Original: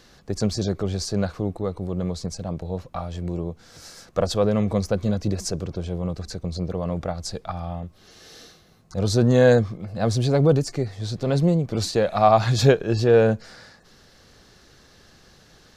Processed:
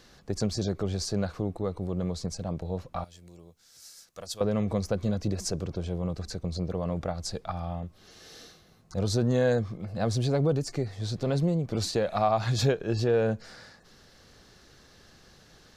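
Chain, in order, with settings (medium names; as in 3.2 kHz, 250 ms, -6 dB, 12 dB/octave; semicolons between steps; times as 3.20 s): 3.04–4.41 s: pre-emphasis filter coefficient 0.9; compression 2:1, threshold -22 dBFS, peak gain reduction 7 dB; trim -3 dB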